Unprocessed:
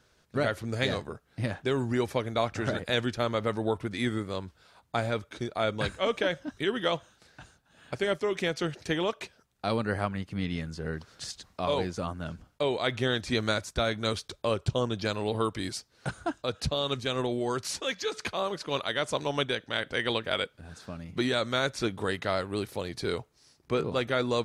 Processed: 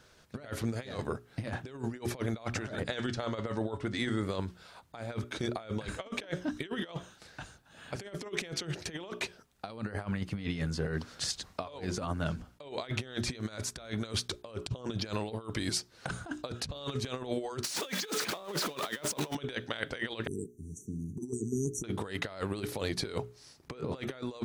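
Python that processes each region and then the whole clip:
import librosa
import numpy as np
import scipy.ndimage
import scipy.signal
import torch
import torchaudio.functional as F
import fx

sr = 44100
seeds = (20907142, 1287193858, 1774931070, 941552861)

y = fx.chain(x, sr, fx.lowpass(hz=8900.0, slope=24),
    fx.notch(hz=2400.0, q=15.0),
    fx.comb_fb(f0_hz=140.0, decay_s=0.22, harmonics='all', damping=0.0, mix_pct=50), at=(2.83, 4.23))
y = fx.chain(y, sr, fx.zero_step(step_db=-33.5),
    fx.highpass(hz=150.0, slope=24), at=(17.64, 19.35))
y = fx.chain(y, sr, fx.brickwall_bandstop(low_hz=440.0, high_hz=5700.0),
    fx.low_shelf(hz=61.0, db=-9.5), at=(20.27, 21.84))
y = fx.hum_notches(y, sr, base_hz=60, count=7)
y = fx.over_compress(y, sr, threshold_db=-35.0, ratio=-0.5)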